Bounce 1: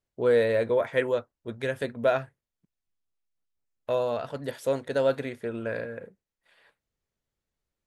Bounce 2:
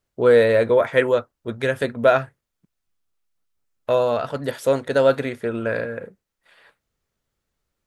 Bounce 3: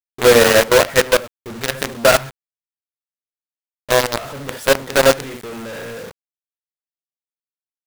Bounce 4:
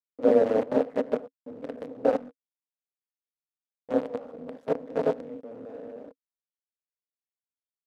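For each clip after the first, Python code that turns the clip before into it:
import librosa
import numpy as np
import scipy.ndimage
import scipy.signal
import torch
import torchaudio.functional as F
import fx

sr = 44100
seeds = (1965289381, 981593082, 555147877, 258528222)

y1 = fx.peak_eq(x, sr, hz=1300.0, db=4.0, octaves=0.37)
y1 = y1 * librosa.db_to_amplitude(7.5)
y2 = fx.room_early_taps(y1, sr, ms=(22, 67), db=(-11.5, -10.5))
y2 = fx.quant_companded(y2, sr, bits=2)
y2 = y2 * librosa.db_to_amplitude(-4.5)
y3 = fx.cycle_switch(y2, sr, every=3, mode='muted')
y3 = y3 * np.sin(2.0 * np.pi * 110.0 * np.arange(len(y3)) / sr)
y3 = fx.double_bandpass(y3, sr, hz=360.0, octaves=0.81)
y3 = y3 * librosa.db_to_amplitude(2.5)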